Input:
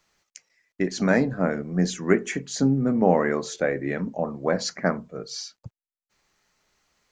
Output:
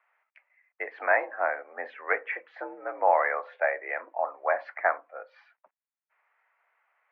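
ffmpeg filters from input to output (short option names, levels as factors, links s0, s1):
-af "highpass=f=600:t=q:w=0.5412,highpass=f=600:t=q:w=1.307,lowpass=f=2200:t=q:w=0.5176,lowpass=f=2200:t=q:w=0.7071,lowpass=f=2200:t=q:w=1.932,afreqshift=62,volume=1.33"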